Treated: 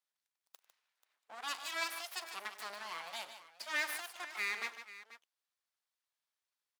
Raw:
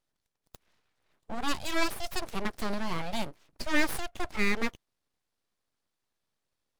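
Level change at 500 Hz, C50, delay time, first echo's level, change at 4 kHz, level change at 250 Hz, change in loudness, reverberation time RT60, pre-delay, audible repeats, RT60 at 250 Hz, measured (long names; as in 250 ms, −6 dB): −14.5 dB, no reverb audible, 42 ms, −19.0 dB, −5.0 dB, −27.0 dB, −7.0 dB, no reverb audible, no reverb audible, 4, no reverb audible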